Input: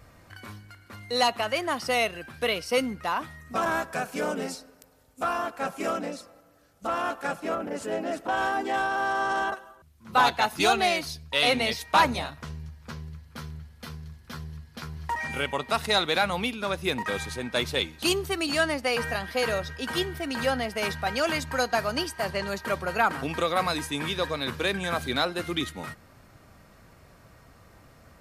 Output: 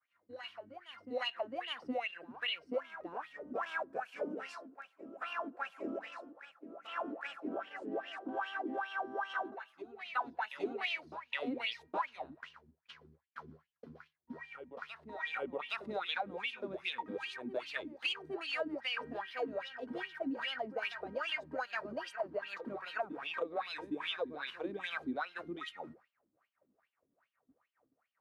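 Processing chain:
LFO wah 2.5 Hz 250–3,100 Hz, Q 8
downward compressor 4 to 1, threshold −38 dBFS, peak gain reduction 14 dB
backwards echo 818 ms −10.5 dB
downward expander −58 dBFS
level +4 dB

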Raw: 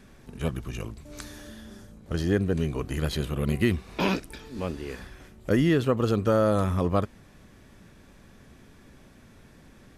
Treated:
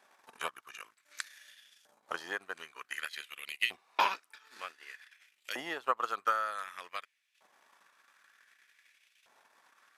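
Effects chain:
transient designer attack +11 dB, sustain −11 dB
auto-filter high-pass saw up 0.54 Hz 780–2,800 Hz
level −8.5 dB

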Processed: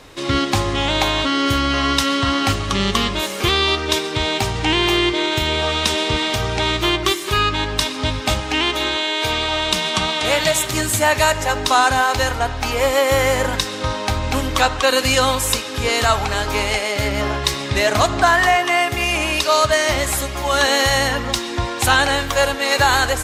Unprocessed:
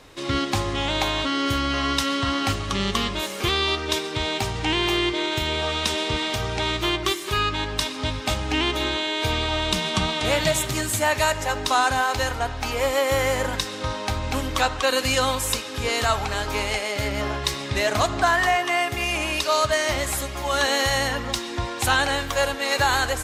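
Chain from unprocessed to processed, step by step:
0:08.40–0:10.73: low-shelf EQ 280 Hz −9 dB
level +5.5 dB

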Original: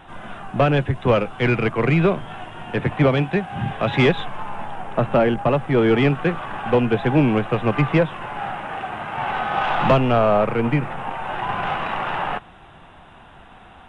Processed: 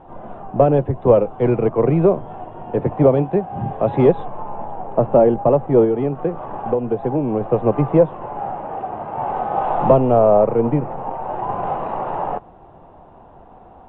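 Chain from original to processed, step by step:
drawn EQ curve 200 Hz 0 dB, 500 Hz +7 dB, 970 Hz +1 dB, 1,500 Hz −13 dB, 5,700 Hz −24 dB
0:05.84–0:07.41: downward compressor 6 to 1, threshold −16 dBFS, peak gain reduction 9.5 dB

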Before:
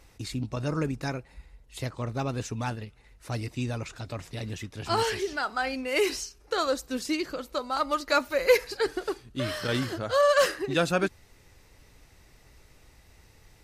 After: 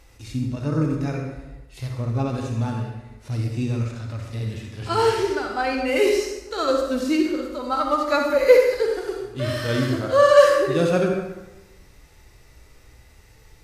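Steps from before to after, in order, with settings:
harmonic and percussive parts rebalanced percussive −16 dB
convolution reverb RT60 1.1 s, pre-delay 42 ms, DRR 2 dB
level +6.5 dB

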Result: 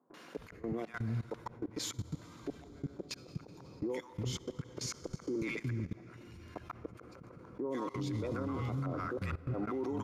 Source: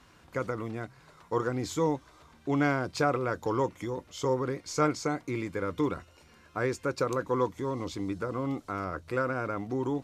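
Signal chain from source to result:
gate with flip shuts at −21 dBFS, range −38 dB
notch filter 7,900 Hz, Q 9.5
three-band delay without the direct sound mids, highs, lows 140/360 ms, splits 230/880 Hz
on a send at −12 dB: convolution reverb RT60 5.0 s, pre-delay 46 ms
on the sum: output level in coarse steps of 22 dB
bass and treble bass +4 dB, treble −3 dB
brickwall limiter −41 dBFS, peak gain reduction 12 dB
level +12 dB

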